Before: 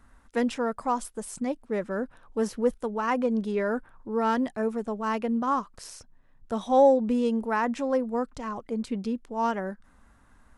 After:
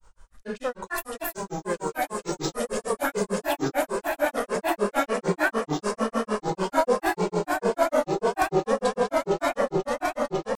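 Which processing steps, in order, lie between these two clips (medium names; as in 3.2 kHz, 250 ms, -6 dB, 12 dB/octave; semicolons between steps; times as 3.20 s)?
comb 1.7 ms, depth 51%; echo with a slow build-up 161 ms, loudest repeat 8, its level -9 dB; simulated room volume 200 m³, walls mixed, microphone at 0.5 m; granulator 137 ms, grains 6.7 per s, pitch spread up and down by 7 st; treble shelf 3 kHz +10.5 dB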